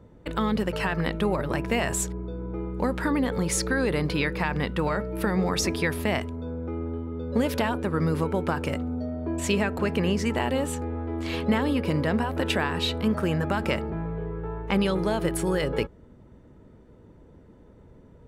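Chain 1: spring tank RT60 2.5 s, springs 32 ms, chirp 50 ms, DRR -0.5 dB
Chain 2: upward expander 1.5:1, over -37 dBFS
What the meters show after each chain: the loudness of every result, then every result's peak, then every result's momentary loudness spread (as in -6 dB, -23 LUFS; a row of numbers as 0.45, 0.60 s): -23.0, -30.0 LUFS; -8.0, -13.0 dBFS; 9, 11 LU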